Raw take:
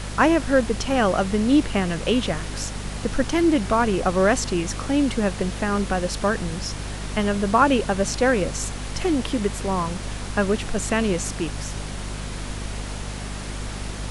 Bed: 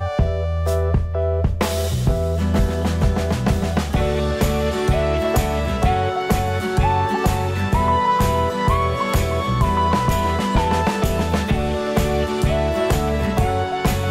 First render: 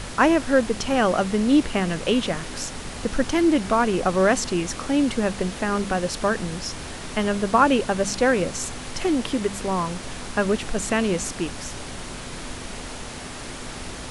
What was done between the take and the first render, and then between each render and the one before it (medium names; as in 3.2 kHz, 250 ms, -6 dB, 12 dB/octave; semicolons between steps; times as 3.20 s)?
de-hum 50 Hz, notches 4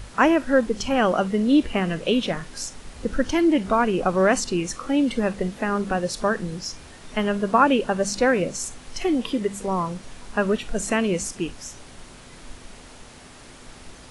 noise print and reduce 10 dB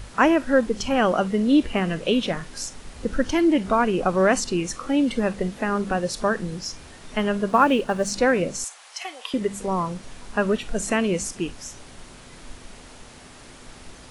7.49–8.11 s: companding laws mixed up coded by A; 8.64–9.34 s: high-pass 690 Hz 24 dB/octave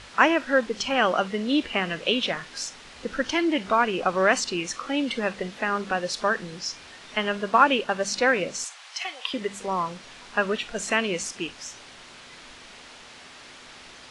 low-pass 3.8 kHz 12 dB/octave; tilt EQ +3.5 dB/octave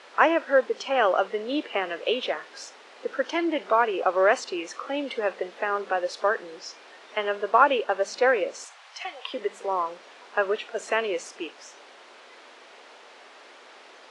high-pass 410 Hz 24 dB/octave; tilt EQ -3.5 dB/octave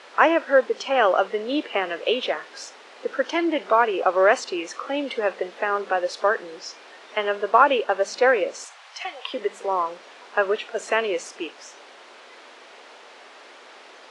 trim +3 dB; peak limiter -3 dBFS, peak gain reduction 1.5 dB